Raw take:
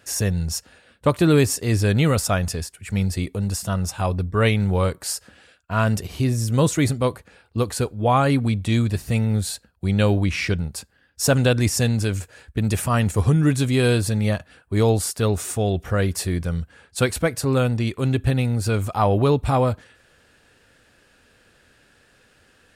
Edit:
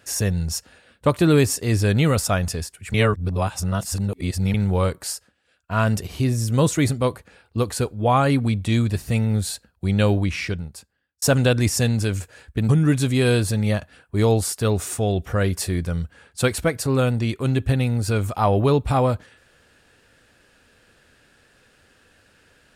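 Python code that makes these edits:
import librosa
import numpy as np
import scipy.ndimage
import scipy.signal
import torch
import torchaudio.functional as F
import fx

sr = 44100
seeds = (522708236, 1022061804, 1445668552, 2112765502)

y = fx.edit(x, sr, fx.reverse_span(start_s=2.94, length_s=1.6),
    fx.fade_down_up(start_s=5.04, length_s=0.69, db=-19.5, fade_s=0.29),
    fx.fade_out_span(start_s=10.1, length_s=1.12),
    fx.cut(start_s=12.69, length_s=0.58), tone=tone)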